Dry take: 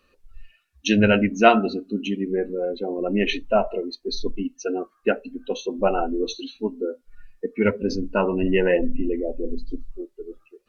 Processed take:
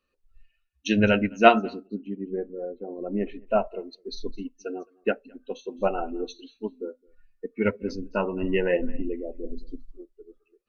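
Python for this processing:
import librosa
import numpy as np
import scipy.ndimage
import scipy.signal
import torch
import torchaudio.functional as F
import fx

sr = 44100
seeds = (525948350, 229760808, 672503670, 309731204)

y = fx.lowpass(x, sr, hz=1100.0, slope=12, at=(1.87, 3.47))
y = y + 10.0 ** (-21.5 / 20.0) * np.pad(y, (int(213 * sr / 1000.0), 0))[:len(y)]
y = fx.upward_expand(y, sr, threshold_db=-39.0, expansion=1.5)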